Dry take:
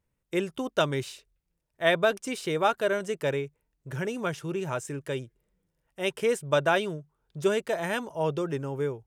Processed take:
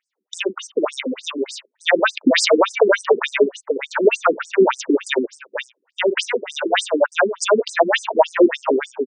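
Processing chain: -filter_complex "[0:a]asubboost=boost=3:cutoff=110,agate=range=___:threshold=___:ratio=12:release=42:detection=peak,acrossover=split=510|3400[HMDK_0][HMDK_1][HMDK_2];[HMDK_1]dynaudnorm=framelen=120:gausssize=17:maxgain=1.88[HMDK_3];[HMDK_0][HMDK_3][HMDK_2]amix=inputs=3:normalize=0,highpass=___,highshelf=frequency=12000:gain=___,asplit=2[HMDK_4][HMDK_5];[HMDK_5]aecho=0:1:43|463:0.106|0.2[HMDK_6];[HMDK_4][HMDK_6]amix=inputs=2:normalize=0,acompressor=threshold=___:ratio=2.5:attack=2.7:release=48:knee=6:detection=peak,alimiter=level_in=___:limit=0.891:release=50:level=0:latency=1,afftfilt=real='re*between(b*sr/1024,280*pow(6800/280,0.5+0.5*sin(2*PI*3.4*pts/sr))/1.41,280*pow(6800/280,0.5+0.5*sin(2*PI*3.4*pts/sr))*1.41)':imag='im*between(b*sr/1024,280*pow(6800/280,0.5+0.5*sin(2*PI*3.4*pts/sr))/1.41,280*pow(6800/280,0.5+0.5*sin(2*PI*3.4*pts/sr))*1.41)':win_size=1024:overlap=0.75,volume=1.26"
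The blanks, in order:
0.251, 0.002, 82, -8.5, 0.0224, 16.8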